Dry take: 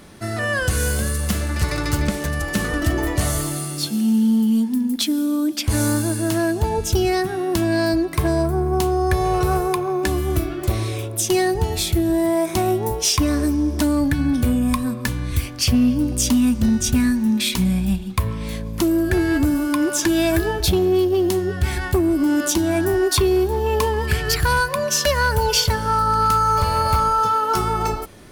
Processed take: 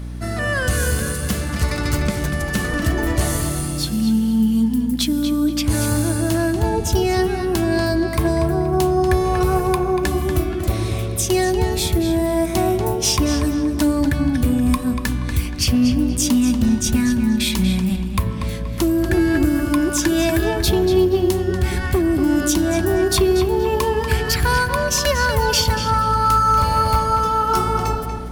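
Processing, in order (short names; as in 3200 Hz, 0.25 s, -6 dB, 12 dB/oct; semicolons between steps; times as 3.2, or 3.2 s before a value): hum 60 Hz, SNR 10 dB; darkening echo 0.238 s, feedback 36%, low-pass 4300 Hz, level -6.5 dB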